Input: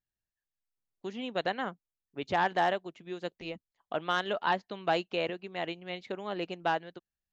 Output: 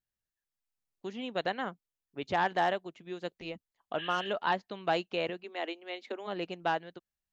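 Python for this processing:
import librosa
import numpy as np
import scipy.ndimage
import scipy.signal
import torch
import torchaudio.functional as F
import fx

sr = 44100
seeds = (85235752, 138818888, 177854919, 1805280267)

y = fx.spec_repair(x, sr, seeds[0], start_s=4.01, length_s=0.23, low_hz=1500.0, high_hz=4100.0, source='after')
y = fx.steep_highpass(y, sr, hz=220.0, slope=96, at=(5.42, 6.26), fade=0.02)
y = F.gain(torch.from_numpy(y), -1.0).numpy()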